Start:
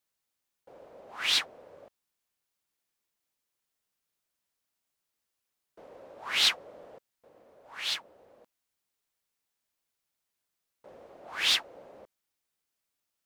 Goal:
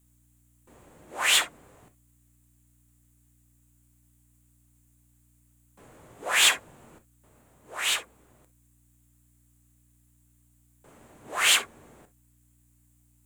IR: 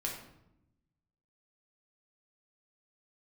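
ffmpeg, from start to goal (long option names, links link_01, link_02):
-filter_complex "[0:a]highpass=frequency=880:width=0.5412,highpass=frequency=880:width=1.3066,highshelf=frequency=6700:width_type=q:width=3:gain=6.5,afreqshift=-460,asplit=2[link_01][link_02];[link_02]asoftclip=type=hard:threshold=-29.5dB,volume=-5dB[link_03];[link_01][link_03]amix=inputs=2:normalize=0,aeval=exprs='val(0)+0.000447*(sin(2*PI*60*n/s)+sin(2*PI*2*60*n/s)/2+sin(2*PI*3*60*n/s)/3+sin(2*PI*4*60*n/s)/4+sin(2*PI*5*60*n/s)/5)':channel_layout=same,asplit=2[link_04][link_05];[1:a]atrim=start_sample=2205,atrim=end_sample=3087[link_06];[link_05][link_06]afir=irnorm=-1:irlink=0,volume=-5dB[link_07];[link_04][link_07]amix=inputs=2:normalize=0"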